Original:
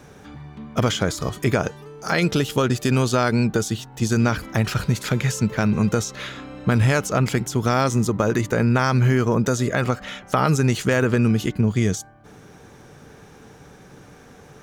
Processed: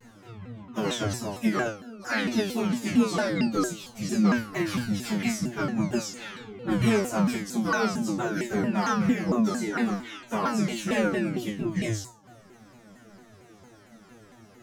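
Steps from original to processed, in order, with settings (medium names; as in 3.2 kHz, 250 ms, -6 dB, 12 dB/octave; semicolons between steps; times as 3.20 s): phase randomisation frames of 50 ms; formant-preserving pitch shift +7.5 st; feedback comb 110 Hz, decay 0.34 s, harmonics all, mix 100%; vibrato with a chosen wave saw down 4.4 Hz, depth 250 cents; trim +5 dB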